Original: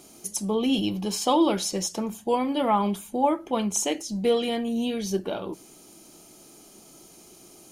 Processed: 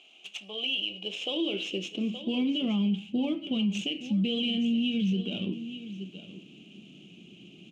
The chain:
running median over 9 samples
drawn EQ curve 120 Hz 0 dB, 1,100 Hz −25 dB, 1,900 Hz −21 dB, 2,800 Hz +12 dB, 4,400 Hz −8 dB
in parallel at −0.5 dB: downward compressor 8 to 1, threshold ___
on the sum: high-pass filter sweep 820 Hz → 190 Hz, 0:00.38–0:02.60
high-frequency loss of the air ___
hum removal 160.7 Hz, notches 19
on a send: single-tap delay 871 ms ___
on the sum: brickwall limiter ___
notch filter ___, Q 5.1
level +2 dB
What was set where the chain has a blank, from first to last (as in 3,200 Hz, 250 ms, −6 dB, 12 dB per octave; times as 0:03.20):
−39 dBFS, 110 metres, −14.5 dB, −23 dBFS, 900 Hz